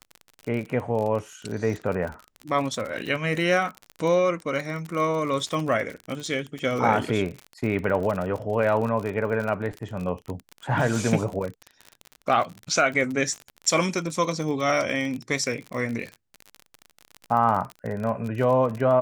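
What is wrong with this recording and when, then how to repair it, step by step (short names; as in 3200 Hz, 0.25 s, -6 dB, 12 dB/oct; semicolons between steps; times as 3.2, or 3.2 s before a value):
crackle 41/s -29 dBFS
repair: de-click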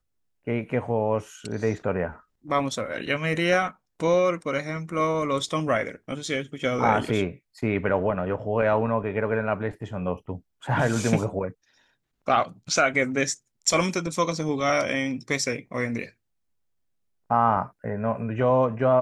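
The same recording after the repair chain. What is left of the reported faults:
none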